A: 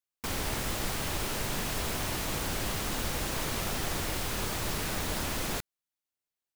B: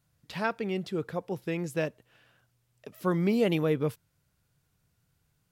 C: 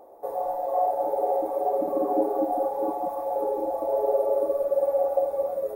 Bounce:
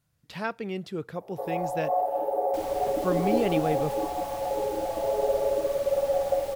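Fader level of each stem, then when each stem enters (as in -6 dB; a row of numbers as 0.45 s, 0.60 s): -11.0 dB, -1.5 dB, -2.0 dB; 2.30 s, 0.00 s, 1.15 s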